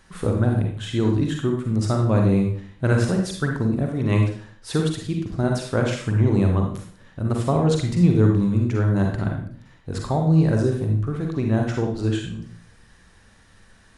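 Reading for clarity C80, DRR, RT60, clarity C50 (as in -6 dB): 8.0 dB, 1.0 dB, 0.50 s, 3.5 dB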